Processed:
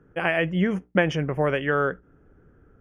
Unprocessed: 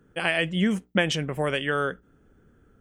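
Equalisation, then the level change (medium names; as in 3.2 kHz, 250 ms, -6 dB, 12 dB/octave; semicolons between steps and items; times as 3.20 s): boxcar filter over 11 samples; peaking EQ 220 Hz -7.5 dB 0.27 oct; +4.0 dB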